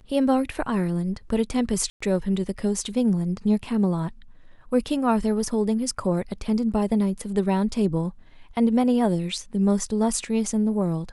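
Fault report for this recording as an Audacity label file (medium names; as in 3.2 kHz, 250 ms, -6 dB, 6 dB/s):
1.900000	2.000000	dropout 105 ms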